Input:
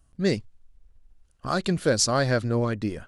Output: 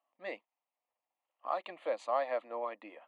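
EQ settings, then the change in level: steep high-pass 370 Hz 36 dB/octave; low-pass 1.9 kHz 12 dB/octave; static phaser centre 1.5 kHz, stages 6; -2.5 dB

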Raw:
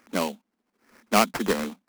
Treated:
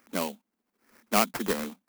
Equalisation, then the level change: treble shelf 11 kHz +10.5 dB; -4.5 dB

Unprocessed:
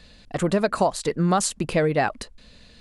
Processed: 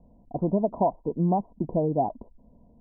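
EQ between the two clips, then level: rippled Chebyshev low-pass 1 kHz, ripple 6 dB; 0.0 dB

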